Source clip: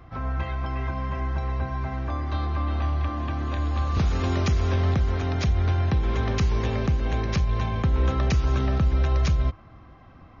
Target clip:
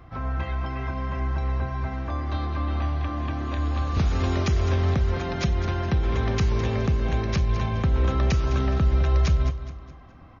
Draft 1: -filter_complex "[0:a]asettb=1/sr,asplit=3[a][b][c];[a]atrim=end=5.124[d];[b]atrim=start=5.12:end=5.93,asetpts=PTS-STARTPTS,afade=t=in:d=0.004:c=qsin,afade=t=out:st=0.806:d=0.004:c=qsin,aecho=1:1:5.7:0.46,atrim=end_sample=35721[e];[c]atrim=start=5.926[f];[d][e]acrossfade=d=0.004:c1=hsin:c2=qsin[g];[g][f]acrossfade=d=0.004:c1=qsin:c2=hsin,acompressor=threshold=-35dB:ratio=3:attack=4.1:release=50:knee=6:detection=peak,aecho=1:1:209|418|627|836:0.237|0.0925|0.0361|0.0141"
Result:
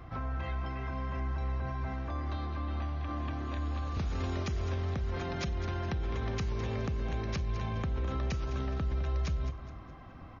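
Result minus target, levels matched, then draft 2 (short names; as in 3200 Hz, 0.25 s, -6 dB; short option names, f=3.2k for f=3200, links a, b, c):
compressor: peak gain reduction +13.5 dB
-filter_complex "[0:a]asettb=1/sr,asplit=3[a][b][c];[a]atrim=end=5.124[d];[b]atrim=start=5.12:end=5.93,asetpts=PTS-STARTPTS,afade=t=in:d=0.004:c=qsin,afade=t=out:st=0.806:d=0.004:c=qsin,aecho=1:1:5.7:0.46,atrim=end_sample=35721[e];[c]atrim=start=5.926[f];[d][e]acrossfade=d=0.004:c1=hsin:c2=qsin[g];[g][f]acrossfade=d=0.004:c1=qsin:c2=hsin,aecho=1:1:209|418|627|836:0.237|0.0925|0.0361|0.0141"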